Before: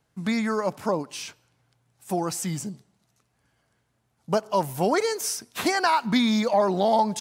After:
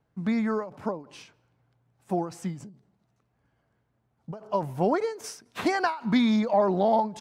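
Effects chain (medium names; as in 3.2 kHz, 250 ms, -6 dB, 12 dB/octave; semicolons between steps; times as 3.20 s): low-pass 1.1 kHz 6 dB/octave, from 5.24 s 2 kHz, from 6.36 s 1.2 kHz; endings held to a fixed fall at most 140 dB/s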